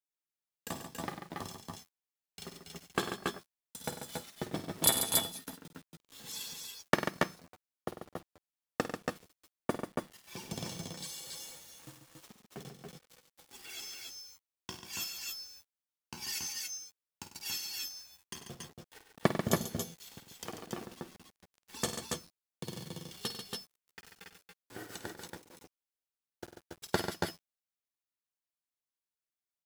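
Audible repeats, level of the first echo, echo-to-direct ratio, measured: 4, -11.5 dB, -1.0 dB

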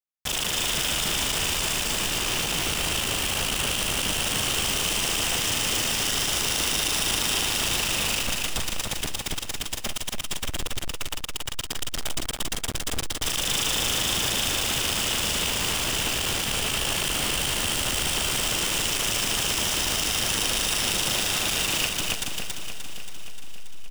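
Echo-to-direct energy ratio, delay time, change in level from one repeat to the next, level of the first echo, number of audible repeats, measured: -1.5 dB, 57 ms, no steady repeat, -13.5 dB, 12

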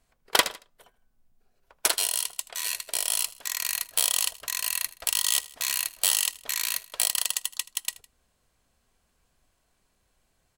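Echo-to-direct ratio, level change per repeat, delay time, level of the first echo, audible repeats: -19.0 dB, -5.5 dB, 79 ms, -20.0 dB, 2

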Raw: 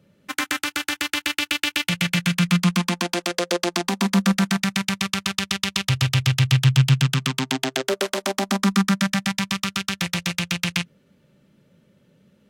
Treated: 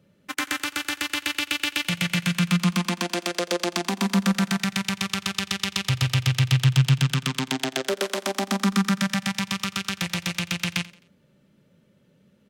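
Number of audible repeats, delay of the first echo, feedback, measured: 2, 87 ms, 39%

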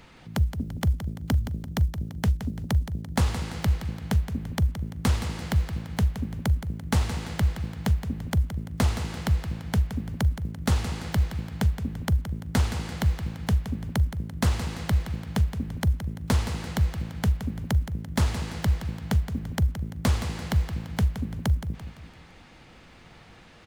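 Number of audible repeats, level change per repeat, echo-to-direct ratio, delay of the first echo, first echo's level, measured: 4, -7.0 dB, -9.0 dB, 0.17 s, -10.0 dB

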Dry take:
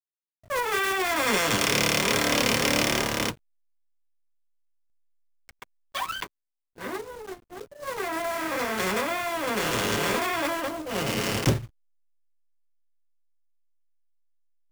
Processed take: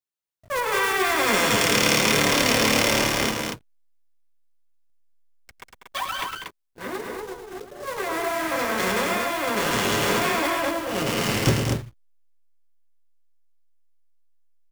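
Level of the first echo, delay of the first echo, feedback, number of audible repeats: -7.5 dB, 0.107 s, no steady repeat, 3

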